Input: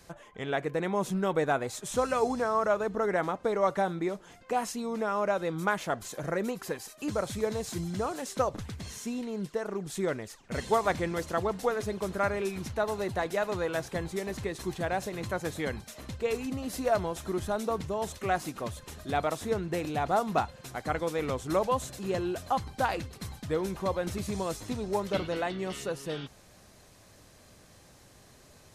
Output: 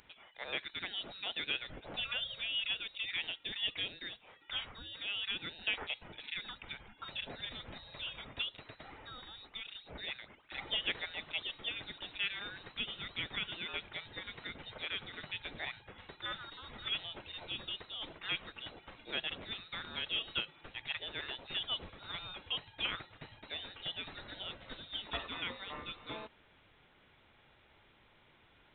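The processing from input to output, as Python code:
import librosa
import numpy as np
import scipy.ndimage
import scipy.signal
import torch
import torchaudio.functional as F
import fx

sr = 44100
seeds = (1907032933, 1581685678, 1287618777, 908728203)

y = np.diff(x, prepend=0.0)
y = fx.freq_invert(y, sr, carrier_hz=4000)
y = y * 10.0 ** (8.5 / 20.0)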